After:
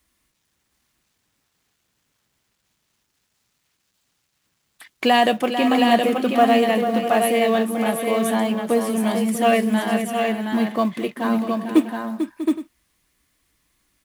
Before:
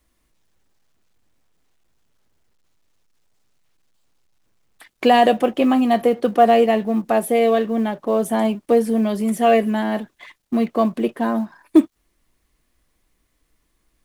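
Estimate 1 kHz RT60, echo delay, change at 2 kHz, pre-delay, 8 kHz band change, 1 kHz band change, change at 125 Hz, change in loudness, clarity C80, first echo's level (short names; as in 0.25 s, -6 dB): none, 0.445 s, +3.5 dB, none, +5.0 dB, -1.0 dB, n/a, -1.5 dB, none, -9.0 dB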